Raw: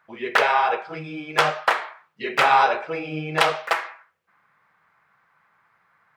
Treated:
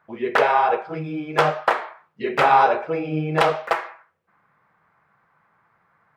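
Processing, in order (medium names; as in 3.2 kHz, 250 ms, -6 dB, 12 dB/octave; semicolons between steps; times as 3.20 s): tilt shelf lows +6.5 dB, about 1.2 kHz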